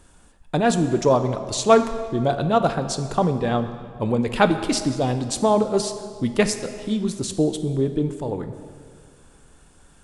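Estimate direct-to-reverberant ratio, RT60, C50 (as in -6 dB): 8.5 dB, 2.1 s, 10.5 dB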